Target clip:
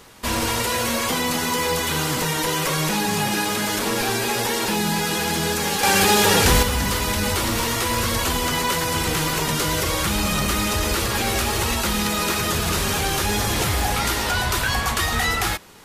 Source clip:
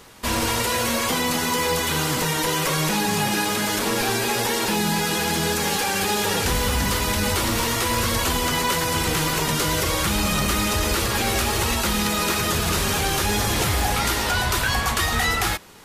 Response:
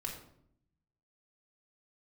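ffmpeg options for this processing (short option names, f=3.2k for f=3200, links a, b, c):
-filter_complex "[0:a]asettb=1/sr,asplit=3[a][b][c];[a]atrim=end=5.834[d];[b]atrim=start=5.83:end=6.63,asetpts=PTS-STARTPTS,afade=t=in:d=0.004:c=qsin,afade=t=out:st=0.796:d=0.004:c=qsin,acontrast=68[e];[c]atrim=start=6.626[f];[d][e]acrossfade=d=0.004:c1=hsin:c2=qsin[g];[g][f]acrossfade=d=0.004:c1=qsin:c2=hsin"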